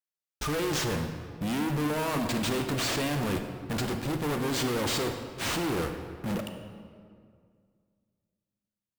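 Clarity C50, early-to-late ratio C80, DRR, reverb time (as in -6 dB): 7.0 dB, 8.0 dB, 6.0 dB, 2.1 s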